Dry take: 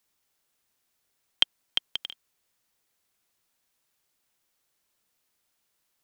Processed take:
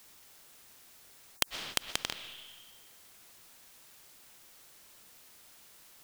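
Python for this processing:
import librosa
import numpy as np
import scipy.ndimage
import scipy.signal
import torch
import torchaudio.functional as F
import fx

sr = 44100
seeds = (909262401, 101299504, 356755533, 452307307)

y = fx.rev_freeverb(x, sr, rt60_s=1.3, hf_ratio=0.95, predelay_ms=85, drr_db=19.0)
y = fx.spectral_comp(y, sr, ratio=4.0)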